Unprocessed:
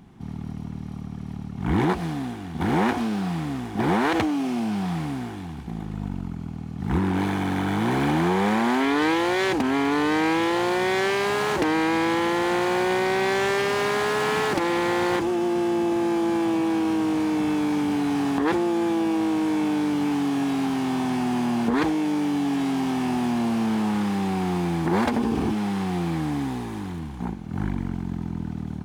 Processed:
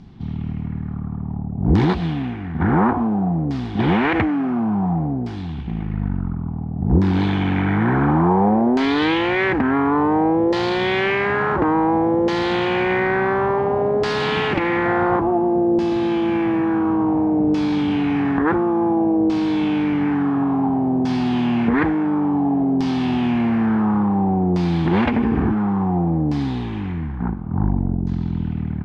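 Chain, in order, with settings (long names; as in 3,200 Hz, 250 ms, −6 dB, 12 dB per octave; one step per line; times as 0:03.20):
0:14.85–0:15.38: parametric band 690 Hz +8 dB 0.22 octaves
auto-filter low-pass saw down 0.57 Hz 520–5,100 Hz
low-shelf EQ 220 Hz +11 dB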